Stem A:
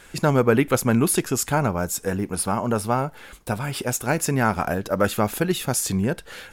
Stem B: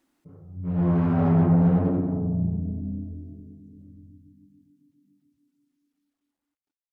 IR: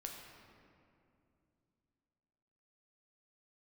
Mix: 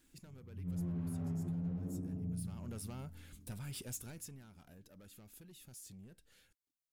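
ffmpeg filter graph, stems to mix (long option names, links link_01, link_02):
-filter_complex "[0:a]acompressor=threshold=-21dB:ratio=6,asoftclip=type=tanh:threshold=-23.5dB,volume=-10.5dB,afade=type=in:start_time=2.3:duration=0.45:silence=0.298538,afade=type=out:start_time=3.91:duration=0.5:silence=0.266073,asplit=2[link_01][link_02];[1:a]volume=3dB[link_03];[link_02]apad=whole_len=305563[link_04];[link_03][link_04]sidechaincompress=threshold=-59dB:ratio=8:attack=16:release=1100[link_05];[link_01][link_05]amix=inputs=2:normalize=0,equalizer=frequency=900:width_type=o:width=3:gain=-14,alimiter=level_in=8dB:limit=-24dB:level=0:latency=1:release=286,volume=-8dB"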